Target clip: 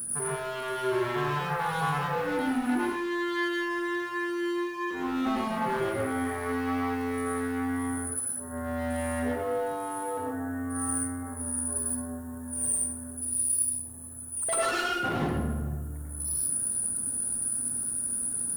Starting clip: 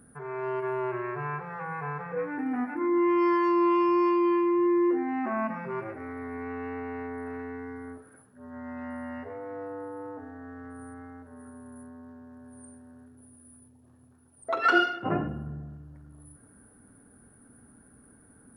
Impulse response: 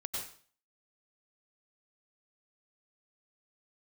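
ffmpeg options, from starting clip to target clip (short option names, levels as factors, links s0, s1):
-filter_complex "[0:a]acompressor=threshold=0.0355:ratio=6,aexciter=amount=13.7:drive=4.6:freq=7300,volume=53.1,asoftclip=hard,volume=0.0188[s0];[1:a]atrim=start_sample=2205[s1];[s0][s1]afir=irnorm=-1:irlink=0,volume=2.51"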